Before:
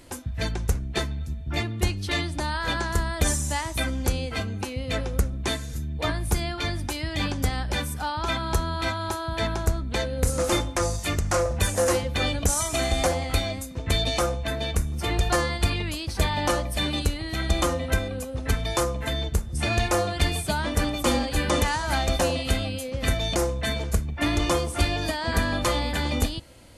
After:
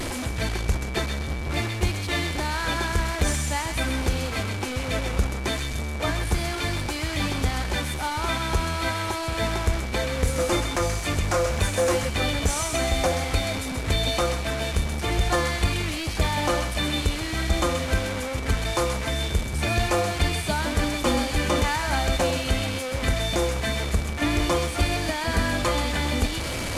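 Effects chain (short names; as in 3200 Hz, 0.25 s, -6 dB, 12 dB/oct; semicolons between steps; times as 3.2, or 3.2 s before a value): delta modulation 64 kbps, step -25 dBFS; whine 2300 Hz -44 dBFS; reverse; upward compressor, threshold -27 dBFS; reverse; high shelf 4700 Hz -6 dB; thin delay 0.13 s, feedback 37%, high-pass 1500 Hz, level -5.5 dB; in parallel at -6.5 dB: hard clip -19 dBFS, distortion -15 dB; on the sum: gain -2.5 dB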